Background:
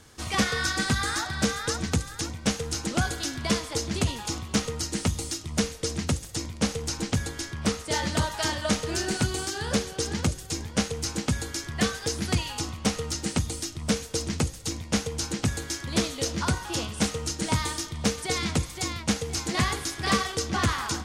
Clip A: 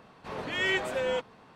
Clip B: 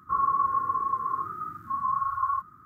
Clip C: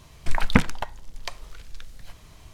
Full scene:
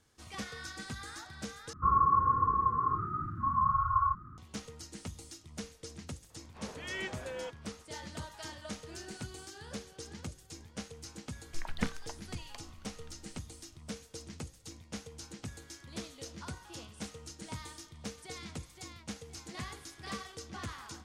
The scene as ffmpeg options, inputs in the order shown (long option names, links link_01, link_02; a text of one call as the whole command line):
ffmpeg -i bed.wav -i cue0.wav -i cue1.wav -i cue2.wav -filter_complex "[0:a]volume=-17dB[link_01];[2:a]aemphasis=mode=reproduction:type=riaa[link_02];[link_01]asplit=2[link_03][link_04];[link_03]atrim=end=1.734[link_05];[link_02]atrim=end=2.65,asetpts=PTS-STARTPTS,volume=-1dB[link_06];[link_04]atrim=start=4.376[link_07];[1:a]atrim=end=1.55,asetpts=PTS-STARTPTS,volume=-11.5dB,afade=type=in:duration=0.004:curve=hsin,afade=type=out:start_time=1.546:duration=0.004:curve=hsin,adelay=6300[link_08];[3:a]atrim=end=2.53,asetpts=PTS-STARTPTS,volume=-16.5dB,afade=type=in:duration=0.004:curve=hsin,afade=type=out:start_time=2.526:duration=0.004:curve=hsin,adelay=11270[link_09];[link_05][link_06]acrossfade=duration=0.004:curve1=hsin:curve2=hsin[link_10];[link_10][link_07]acrossfade=duration=0.004:curve1=hsin:curve2=hsin[link_11];[link_11][link_08][link_09]amix=inputs=3:normalize=0" out.wav